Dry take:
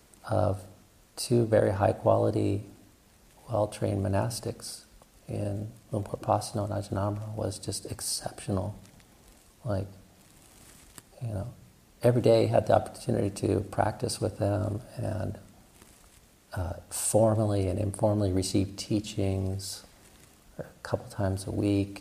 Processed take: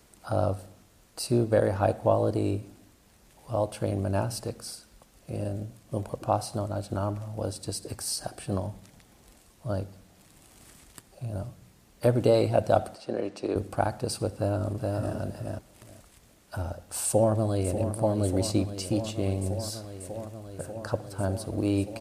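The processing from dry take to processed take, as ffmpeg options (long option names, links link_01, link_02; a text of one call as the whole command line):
ffmpeg -i in.wav -filter_complex "[0:a]asettb=1/sr,asplit=3[link_01][link_02][link_03];[link_01]atrim=end=12.954[link_04];[link_02]atrim=start=12.95:end=13.56,asetpts=PTS-STARTPTS,afade=type=in:duration=0.004:curve=qsin,afade=type=out:start_time=0.606:duration=0.004:curve=qsin,acrossover=split=250 6200:gain=0.126 1 0.0891[link_05][link_06][link_07];[link_05][link_06][link_07]amix=inputs=3:normalize=0[link_08];[link_03]atrim=start=13.556[link_09];[link_04][link_08]acrossfade=duration=0.004:curve1=hsin:curve2=qsin[link_10];[link_10][link_09]acrossfade=duration=0.004:curve1=qsin:curve2=hsin,asplit=2[link_11][link_12];[link_12]afade=type=in:start_time=14.35:duration=0.01,afade=type=out:start_time=15.16:duration=0.01,aecho=0:1:420|840|1260:0.749894|0.112484|0.0168726[link_13];[link_11][link_13]amix=inputs=2:normalize=0,asplit=2[link_14][link_15];[link_15]afade=type=in:start_time=17.05:duration=0.01,afade=type=out:start_time=17.92:duration=0.01,aecho=0:1:590|1180|1770|2360|2950|3540|4130|4720|5310|5900|6490|7080:0.316228|0.268794|0.228475|0.194203|0.165073|0.140312|0.119265|0.101375|0.0861691|0.0732437|0.0622572|0.0529186[link_16];[link_14][link_16]amix=inputs=2:normalize=0" out.wav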